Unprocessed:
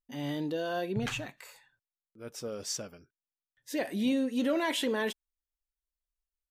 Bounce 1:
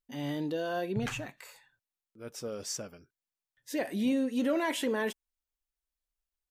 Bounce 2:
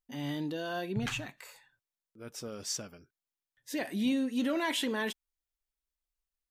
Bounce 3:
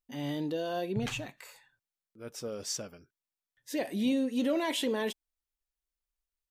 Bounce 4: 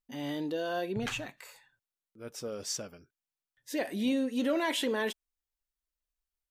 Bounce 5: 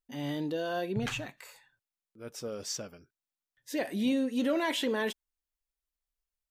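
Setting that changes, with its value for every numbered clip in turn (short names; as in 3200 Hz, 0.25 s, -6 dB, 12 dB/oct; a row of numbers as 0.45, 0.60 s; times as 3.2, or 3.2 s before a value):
dynamic EQ, frequency: 3700, 510, 1500, 140, 9700 Hz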